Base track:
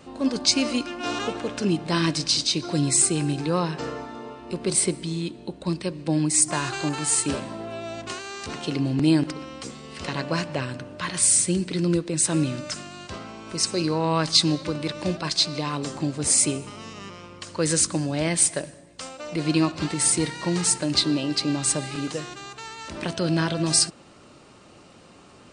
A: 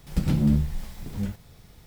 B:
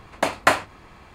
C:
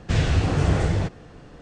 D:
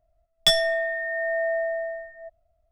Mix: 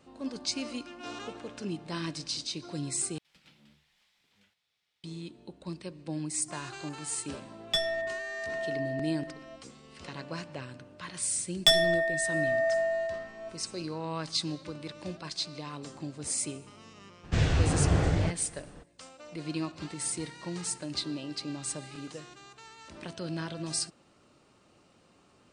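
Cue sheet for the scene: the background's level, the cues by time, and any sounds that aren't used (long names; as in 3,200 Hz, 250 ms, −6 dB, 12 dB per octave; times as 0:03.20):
base track −12.5 dB
0:03.18: overwrite with A −15 dB + resonant band-pass 3,000 Hz, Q 1.4
0:07.27: mix in D −8.5 dB + high-shelf EQ 9,800 Hz −11.5 dB
0:11.20: mix in D −2 dB + dense smooth reverb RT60 1.6 s, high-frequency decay 0.65×, DRR 15.5 dB
0:17.23: mix in C −4.5 dB, fades 0.02 s
not used: B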